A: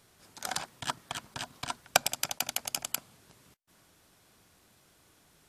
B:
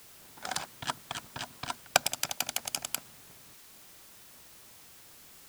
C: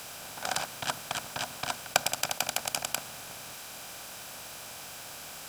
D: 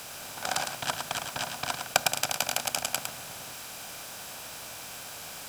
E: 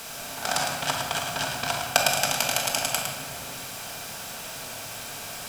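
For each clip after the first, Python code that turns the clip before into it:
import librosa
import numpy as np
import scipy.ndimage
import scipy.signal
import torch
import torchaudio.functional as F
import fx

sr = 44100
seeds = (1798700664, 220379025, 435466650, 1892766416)

y1 = fx.env_lowpass(x, sr, base_hz=1100.0, full_db=-33.0)
y1 = fx.dmg_noise_colour(y1, sr, seeds[0], colour='white', level_db=-54.0)
y2 = fx.bin_compress(y1, sr, power=0.6)
y2 = y2 * 10.0 ** (-2.0 / 20.0)
y3 = y2 + 10.0 ** (-6.0 / 20.0) * np.pad(y2, (int(108 * sr / 1000.0), 0))[:len(y2)]
y3 = y3 * 10.0 ** (1.0 / 20.0)
y4 = fx.room_shoebox(y3, sr, seeds[1], volume_m3=800.0, walls='mixed', distance_m=1.6)
y4 = y4 * 10.0 ** (2.0 / 20.0)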